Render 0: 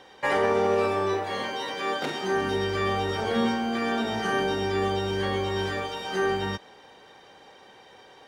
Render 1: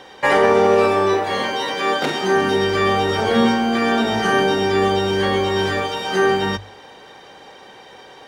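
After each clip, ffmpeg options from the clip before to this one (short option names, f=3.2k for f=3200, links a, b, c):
-af "bandreject=f=50:t=h:w=6,bandreject=f=100:t=h:w=6,volume=9dB"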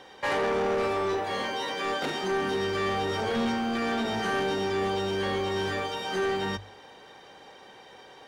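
-af "asoftclip=type=tanh:threshold=-15.5dB,volume=-7.5dB"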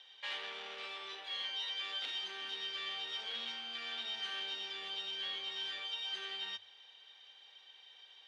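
-af "bandpass=f=3.3k:t=q:w=3.8:csg=0,volume=1dB"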